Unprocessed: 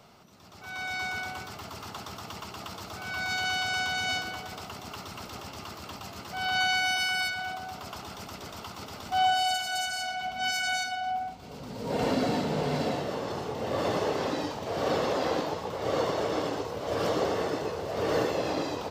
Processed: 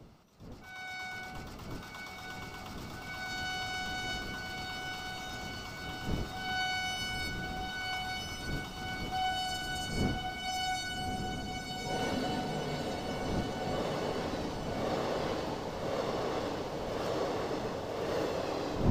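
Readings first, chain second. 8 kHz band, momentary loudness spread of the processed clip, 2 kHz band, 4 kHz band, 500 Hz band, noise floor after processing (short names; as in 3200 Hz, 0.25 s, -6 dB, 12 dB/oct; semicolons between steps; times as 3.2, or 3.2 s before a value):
-5.5 dB, 9 LU, -6.0 dB, -5.5 dB, -5.5 dB, -46 dBFS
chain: wind noise 250 Hz -36 dBFS; diffused feedback echo 1.226 s, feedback 63%, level -3.5 dB; gain -8 dB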